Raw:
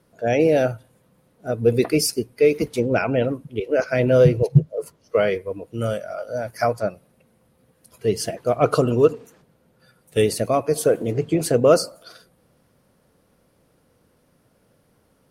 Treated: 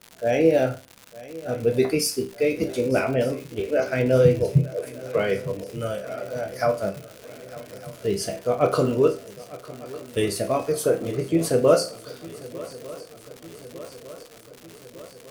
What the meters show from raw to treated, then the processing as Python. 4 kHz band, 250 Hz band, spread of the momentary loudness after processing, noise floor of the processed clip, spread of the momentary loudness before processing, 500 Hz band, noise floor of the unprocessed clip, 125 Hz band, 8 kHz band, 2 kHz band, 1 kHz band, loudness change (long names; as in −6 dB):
−2.0 dB, −2.0 dB, 21 LU, −48 dBFS, 13 LU, −2.5 dB, −63 dBFS, −3.5 dB, −2.0 dB, −2.5 dB, −3.0 dB, −2.5 dB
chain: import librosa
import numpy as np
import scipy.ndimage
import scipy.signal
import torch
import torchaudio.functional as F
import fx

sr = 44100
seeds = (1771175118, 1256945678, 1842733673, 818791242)

y = fx.resonator_bank(x, sr, root=36, chord='major', decay_s=0.31)
y = fx.dmg_crackle(y, sr, seeds[0], per_s=210.0, level_db=-40.0)
y = fx.echo_swing(y, sr, ms=1204, ratio=3, feedback_pct=64, wet_db=-19)
y = F.gain(torch.from_numpy(y), 8.5).numpy()